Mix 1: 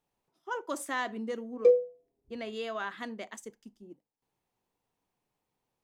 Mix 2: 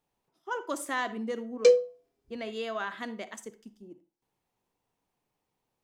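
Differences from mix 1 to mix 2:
background: remove running mean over 31 samples; reverb: on, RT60 0.35 s

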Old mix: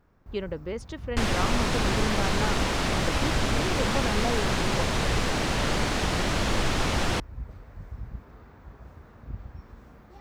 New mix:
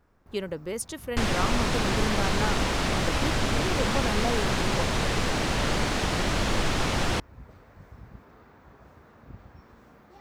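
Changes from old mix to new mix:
speech: remove air absorption 160 m; first sound: add HPF 200 Hz 6 dB/oct

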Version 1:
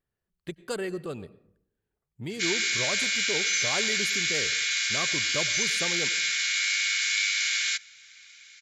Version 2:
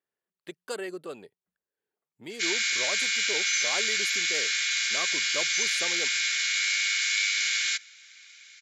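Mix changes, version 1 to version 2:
speech: send off; master: add HPF 340 Hz 12 dB/oct

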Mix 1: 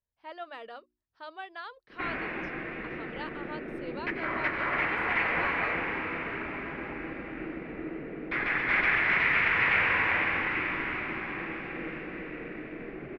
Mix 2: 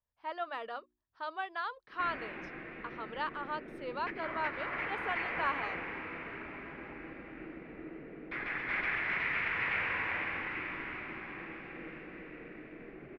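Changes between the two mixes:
speech: add bell 1100 Hz +6.5 dB 1.1 oct; background -8.5 dB

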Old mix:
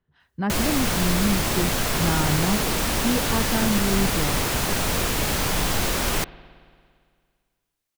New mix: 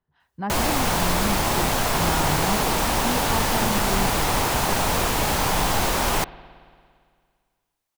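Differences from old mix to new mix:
speech -6.0 dB; master: add bell 860 Hz +8 dB 0.9 oct

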